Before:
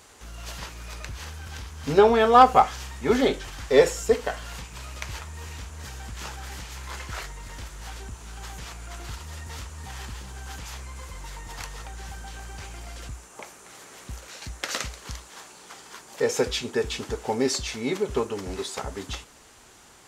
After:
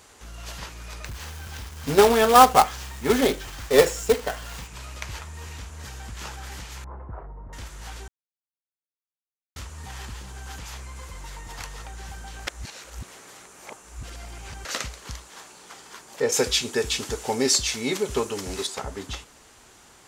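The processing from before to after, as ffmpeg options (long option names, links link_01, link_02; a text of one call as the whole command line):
ffmpeg -i in.wav -filter_complex "[0:a]asettb=1/sr,asplit=3[link_01][link_02][link_03];[link_01]atrim=end=1.054[link_04];[link_02]atrim=start=1.05:end=4.68,asetpts=PTS-STARTPTS,afade=type=in:duration=0.004:curve=qsin,afade=type=out:start_time=3.626:duration=0.004:curve=qsin,acrusher=bits=2:mode=log:mix=0:aa=0.000001[link_05];[link_03]atrim=start=4.676[link_06];[link_04][link_05]acrossfade=duration=0.004:curve1=hsin:curve2=qsin[link_07];[link_07][link_06]acrossfade=duration=0.004:curve1=qsin:curve2=hsin,asettb=1/sr,asplit=3[link_08][link_09][link_10];[link_08]atrim=end=6.844[link_11];[link_09]atrim=start=6.84:end=7.53,asetpts=PTS-STARTPTS,afade=type=in:duration=0.004:curve=qsin,afade=type=out:start_time=0.686:duration=0.004:curve=qsin,lowpass=frequency=1000:width=0.5412,lowpass=frequency=1000:width=1.3066[link_12];[link_10]atrim=start=7.526[link_13];[link_11][link_12]acrossfade=duration=0.004:curve1=hsin:curve2=qsin[link_14];[link_14][link_13]acrossfade=duration=0.004:curve1=qsin:curve2=hsin,asettb=1/sr,asplit=3[link_15][link_16][link_17];[link_15]atrim=end=16.324[link_18];[link_16]atrim=start=16.32:end=18.67,asetpts=PTS-STARTPTS,afade=type=in:duration=0.004:curve=qsin,afade=type=out:start_time=2.346:duration=0.004:curve=qsin,highshelf=frequency=3000:gain=10.5[link_19];[link_17]atrim=start=18.666[link_20];[link_18][link_19]acrossfade=duration=0.004:curve1=hsin:curve2=qsin[link_21];[link_21][link_20]acrossfade=duration=0.004:curve1=qsin:curve2=hsin,asplit=5[link_22][link_23][link_24][link_25][link_26];[link_22]atrim=end=8.08,asetpts=PTS-STARTPTS,afade=type=out:start_time=8.076:duration=0.004:curve=hsin[link_27];[link_23]atrim=start=8.08:end=9.56,asetpts=PTS-STARTPTS,volume=0[link_28];[link_24]atrim=start=9.56:end=12.472,asetpts=PTS-STARTPTS,afade=type=in:duration=0.004:curve=hsin[link_29];[link_25]atrim=start=12.468:end=14.652,asetpts=PTS-STARTPTS,areverse[link_30];[link_26]atrim=start=14.648[link_31];[link_27][link_28][link_29]concat=n=3:v=0:a=1[link_32];[link_32][link_30]acrossfade=duration=0.004:curve1=hsin:curve2=hsin[link_33];[link_33][link_31]acrossfade=duration=0.004:curve1=hsin:curve2=hsin" out.wav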